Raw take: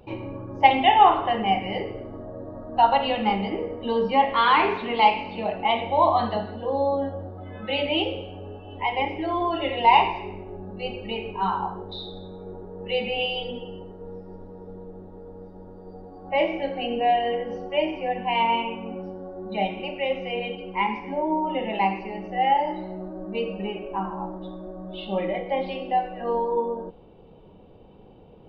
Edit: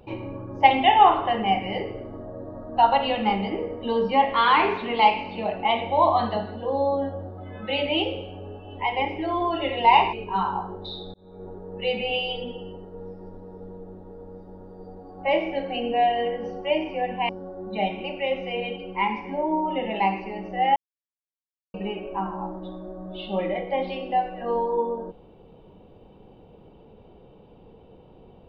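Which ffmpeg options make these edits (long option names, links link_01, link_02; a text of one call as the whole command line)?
ffmpeg -i in.wav -filter_complex "[0:a]asplit=6[link_01][link_02][link_03][link_04][link_05][link_06];[link_01]atrim=end=10.132[link_07];[link_02]atrim=start=11.198:end=12.21,asetpts=PTS-STARTPTS,afade=type=out:start_time=1.008:duration=0.004:curve=hsin[link_08];[link_03]atrim=start=12.21:end=18.362,asetpts=PTS-STARTPTS,afade=type=in:duration=0.35[link_09];[link_04]atrim=start=19.078:end=22.55,asetpts=PTS-STARTPTS,afade=type=out:start_time=3.468:duration=0.004:curve=hsin[link_10];[link_05]atrim=start=22.55:end=23.53,asetpts=PTS-STARTPTS,volume=0[link_11];[link_06]atrim=start=23.53,asetpts=PTS-STARTPTS,afade=type=in:duration=0.004:curve=hsin[link_12];[link_08][link_09]concat=n=2:v=0:a=1[link_13];[link_07][link_13]acrossfade=duration=0.004:curve1=hsin:curve2=hsin[link_14];[link_10][link_11][link_12]concat=n=3:v=0:a=1[link_15];[link_14][link_15]acrossfade=duration=0.004:curve1=hsin:curve2=hsin" out.wav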